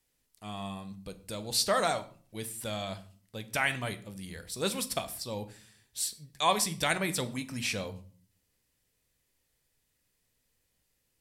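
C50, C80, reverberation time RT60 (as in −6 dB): 16.0 dB, 19.5 dB, non-exponential decay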